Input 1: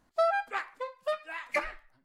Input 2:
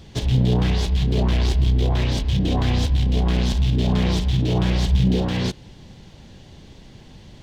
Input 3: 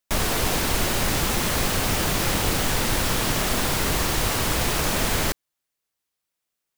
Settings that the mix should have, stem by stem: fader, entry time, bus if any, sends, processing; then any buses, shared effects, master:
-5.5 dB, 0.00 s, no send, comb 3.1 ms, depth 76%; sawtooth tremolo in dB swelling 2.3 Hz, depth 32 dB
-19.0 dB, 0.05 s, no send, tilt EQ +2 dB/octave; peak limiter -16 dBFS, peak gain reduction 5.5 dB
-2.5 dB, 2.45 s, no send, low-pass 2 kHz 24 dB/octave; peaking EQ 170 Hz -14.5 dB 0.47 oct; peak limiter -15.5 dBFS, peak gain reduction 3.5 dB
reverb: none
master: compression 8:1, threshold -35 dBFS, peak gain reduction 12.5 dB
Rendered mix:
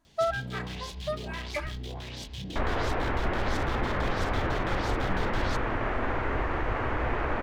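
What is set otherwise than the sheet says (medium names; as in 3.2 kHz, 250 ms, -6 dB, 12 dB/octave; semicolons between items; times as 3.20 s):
stem 1: missing sawtooth tremolo in dB swelling 2.3 Hz, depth 32 dB; stem 2 -19.0 dB -> -12.5 dB; master: missing compression 8:1, threshold -35 dBFS, peak gain reduction 12.5 dB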